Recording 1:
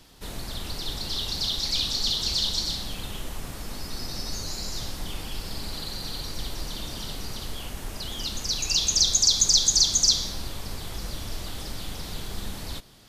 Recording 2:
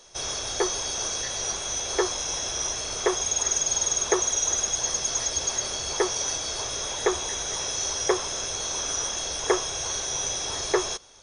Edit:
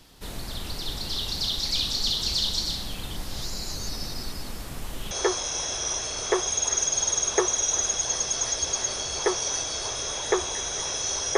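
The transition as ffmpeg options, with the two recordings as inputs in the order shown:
-filter_complex "[0:a]apad=whole_dur=11.37,atrim=end=11.37,asplit=2[a][b];[a]atrim=end=3.112[c];[b]atrim=start=3.108:end=5.112,asetpts=PTS-STARTPTS,areverse[d];[1:a]atrim=start=1.848:end=8.11[e];[c][d]acrossfade=d=0.004:c1=hsin:c2=hsin[f];[f][e]acrossfade=d=0.004:c1=hsin:c2=hsin"

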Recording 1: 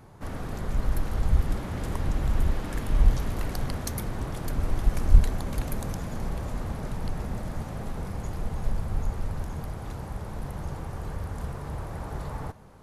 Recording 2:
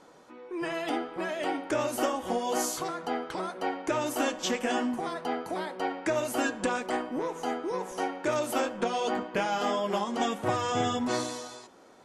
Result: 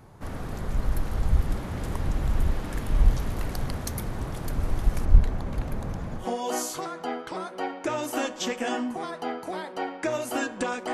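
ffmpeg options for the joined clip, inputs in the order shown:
-filter_complex "[0:a]asettb=1/sr,asplit=3[a][b][c];[a]atrim=end=5.054[d];[b]atrim=start=5.05:end=6.27,asetpts=PTS-STARTPTS,afade=t=in:d=0.004:c=qsin,afade=t=out:st=1.216:d=0.004:c=qsin,lowpass=f=2.4k:p=1[e];[c]atrim=start=6.266[f];[d][e]acrossfade=d=0.004:c1=hsin:c2=qsin[g];[g][f]acrossfade=d=0.004:c1=qsin:c2=hsin,apad=whole_dur=10.93,atrim=end=10.93,atrim=end=6.27,asetpts=PTS-STARTPTS[h];[1:a]atrim=start=2.18:end=6.96,asetpts=PTS-STARTPTS[i];[h][i]acrossfade=d=0.12:c1=tri:c2=tri"

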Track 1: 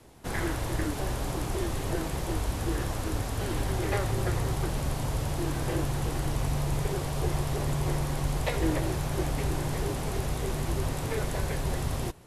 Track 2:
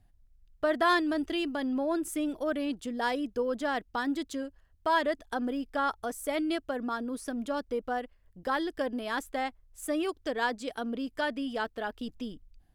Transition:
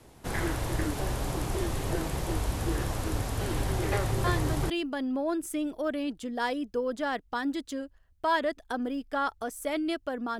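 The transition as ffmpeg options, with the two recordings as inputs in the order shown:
-filter_complex "[1:a]asplit=2[a][b];[0:a]apad=whole_dur=10.39,atrim=end=10.39,atrim=end=4.702[c];[b]atrim=start=1.318:end=7.01[d];[a]atrim=start=0.86:end=1.32,asetpts=PTS-STARTPTS,volume=-7dB,afade=t=in:d=0.004:c=hsin,afade=t=out:st=0.456:d=0.004:c=hsin,adelay=4240[e];[c][d]acrossfade=d=0.004:c1=hsin:c2=hsin[f];[f][e]amix=inputs=2:normalize=0"

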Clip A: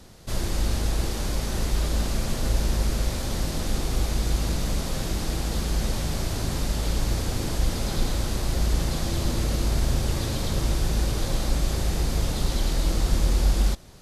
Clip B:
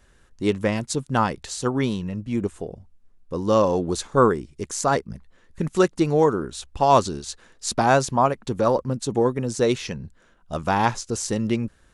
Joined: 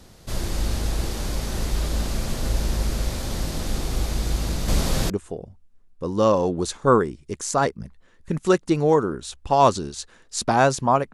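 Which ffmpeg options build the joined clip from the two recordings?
-filter_complex "[0:a]asettb=1/sr,asplit=3[a][b][c];[a]atrim=end=4.684[d];[b]atrim=start=4.68:end=5.1,asetpts=PTS-STARTPTS,afade=t=in:d=0.004:c=qsin,afade=t=out:st=0.416:d=0.004:c=qsin,acontrast=46[e];[c]atrim=start=5.096[f];[d][e]acrossfade=d=0.004:c1=hsin:c2=qsin[g];[g][f]acrossfade=d=0.004:c1=qsin:c2=hsin,apad=whole_dur=11.13,atrim=end=11.13,atrim=end=5.102[h];[1:a]atrim=start=2.398:end=8.43[i];[h][i]acrossfade=d=0.004:c1=hsin:c2=hsin"

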